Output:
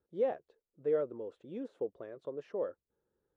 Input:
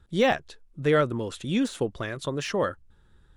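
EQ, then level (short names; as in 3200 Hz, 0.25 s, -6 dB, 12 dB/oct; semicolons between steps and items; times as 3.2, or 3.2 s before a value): band-pass 480 Hz, Q 2.6; -6.5 dB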